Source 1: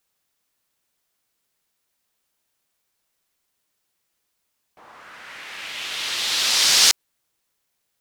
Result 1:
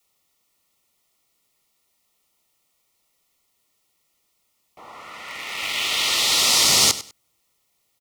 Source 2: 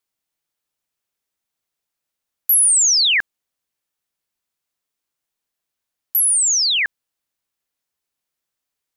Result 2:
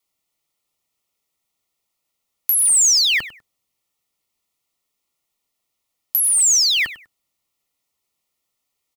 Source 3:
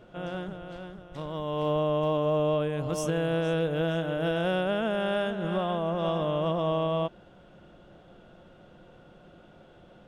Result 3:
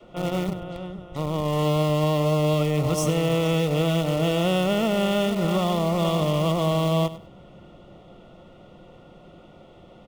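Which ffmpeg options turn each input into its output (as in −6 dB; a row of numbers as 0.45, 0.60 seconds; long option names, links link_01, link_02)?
-filter_complex "[0:a]adynamicequalizer=threshold=0.00501:dfrequency=110:dqfactor=0.76:tfrequency=110:tqfactor=0.76:attack=5:release=100:ratio=0.375:range=3.5:mode=boostabove:tftype=bell,acrossover=split=450|1400|6200[link_01][link_02][link_03][link_04];[link_01]acompressor=threshold=-30dB:ratio=4[link_05];[link_02]acompressor=threshold=-35dB:ratio=4[link_06];[link_03]acompressor=threshold=-28dB:ratio=4[link_07];[link_04]acompressor=threshold=-27dB:ratio=4[link_08];[link_05][link_06][link_07][link_08]amix=inputs=4:normalize=0,asplit=2[link_09][link_10];[link_10]acrusher=bits=4:mix=0:aa=0.000001,volume=-10dB[link_11];[link_09][link_11]amix=inputs=2:normalize=0,asuperstop=centerf=1600:order=8:qfactor=4.4,aecho=1:1:99|198:0.168|0.0353,volume=5dB"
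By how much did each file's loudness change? 0.0, 0.0, +5.5 LU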